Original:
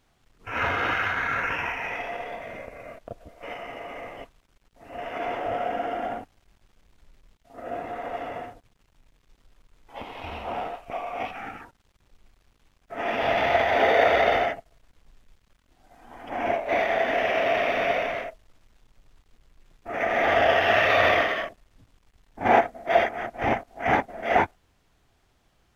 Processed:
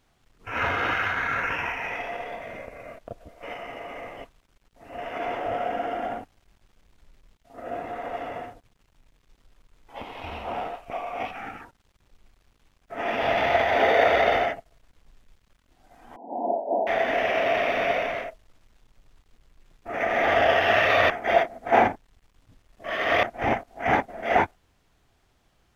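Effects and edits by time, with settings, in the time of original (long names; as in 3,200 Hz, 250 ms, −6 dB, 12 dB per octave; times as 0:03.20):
0:16.16–0:16.87: linear-phase brick-wall band-pass 180–1,000 Hz
0:21.10–0:23.23: reverse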